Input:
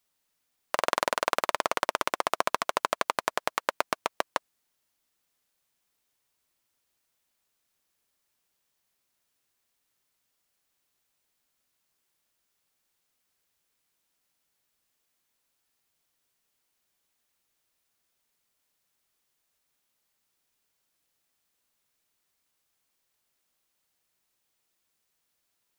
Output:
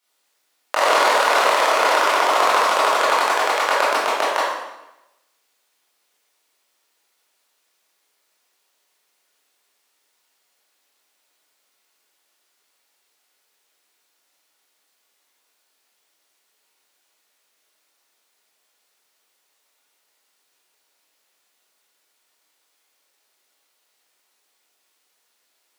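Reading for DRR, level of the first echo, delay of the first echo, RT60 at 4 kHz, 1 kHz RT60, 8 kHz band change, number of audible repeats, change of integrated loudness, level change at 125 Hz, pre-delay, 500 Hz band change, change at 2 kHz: -9.0 dB, no echo, no echo, 0.85 s, 0.95 s, +10.0 dB, no echo, +12.0 dB, no reading, 18 ms, +12.0 dB, +12.5 dB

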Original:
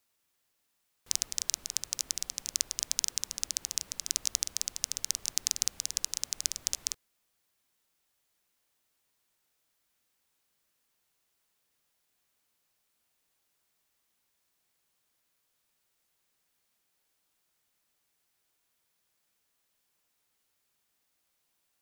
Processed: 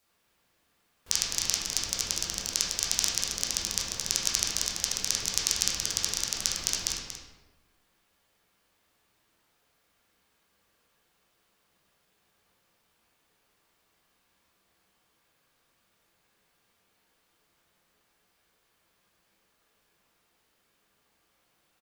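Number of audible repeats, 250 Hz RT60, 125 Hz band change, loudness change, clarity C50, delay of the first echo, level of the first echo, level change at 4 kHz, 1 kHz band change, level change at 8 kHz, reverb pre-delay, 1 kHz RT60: 1, 1.3 s, +13.0 dB, +4.0 dB, -0.5 dB, 234 ms, -9.5 dB, +6.0 dB, +12.0 dB, +3.5 dB, 10 ms, 1.1 s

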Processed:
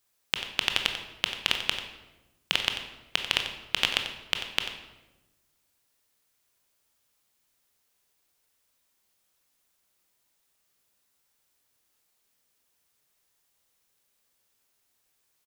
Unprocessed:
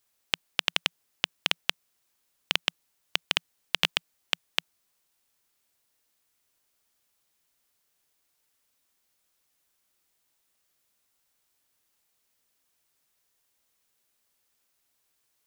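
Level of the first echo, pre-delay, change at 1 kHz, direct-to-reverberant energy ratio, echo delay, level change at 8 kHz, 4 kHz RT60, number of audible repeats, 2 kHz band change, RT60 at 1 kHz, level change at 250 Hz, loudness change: -11.5 dB, 19 ms, +1.5 dB, 4.0 dB, 91 ms, +1.0 dB, 0.75 s, 1, +1.5 dB, 0.95 s, +1.5 dB, +1.0 dB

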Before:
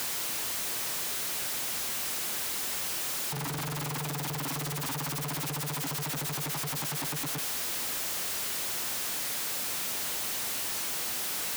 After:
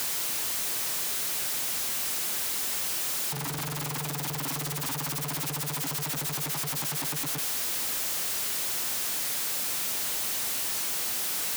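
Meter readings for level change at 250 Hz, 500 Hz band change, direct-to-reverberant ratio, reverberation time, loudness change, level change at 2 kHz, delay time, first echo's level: 0.0 dB, 0.0 dB, no reverb, no reverb, +3.0 dB, +0.5 dB, no echo, no echo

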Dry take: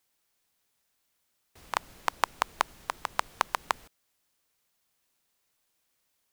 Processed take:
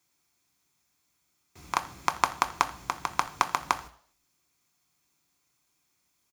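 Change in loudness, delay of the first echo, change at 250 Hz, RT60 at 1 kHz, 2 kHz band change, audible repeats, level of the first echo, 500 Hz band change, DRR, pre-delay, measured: +3.0 dB, 83 ms, +6.5 dB, 0.50 s, +1.5 dB, 1, -21.0 dB, 0.0 dB, 7.0 dB, 3 ms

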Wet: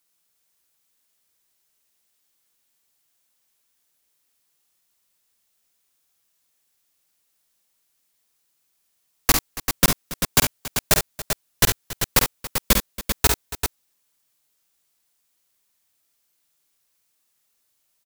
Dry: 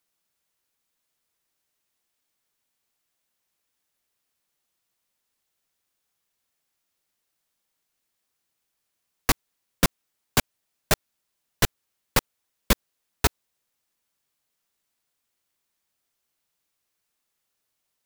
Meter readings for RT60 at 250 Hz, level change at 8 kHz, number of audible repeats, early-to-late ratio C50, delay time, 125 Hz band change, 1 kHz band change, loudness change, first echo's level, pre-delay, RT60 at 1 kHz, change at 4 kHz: no reverb, +8.5 dB, 3, no reverb, 50 ms, +3.0 dB, +3.0 dB, +5.0 dB, -7.0 dB, no reverb, no reverb, +6.0 dB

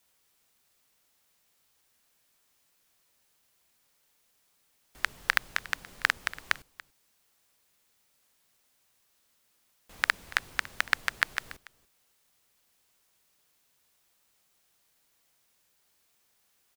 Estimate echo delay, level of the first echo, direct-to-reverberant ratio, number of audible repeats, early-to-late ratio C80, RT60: 285 ms, -19.5 dB, no reverb, 1, no reverb, no reverb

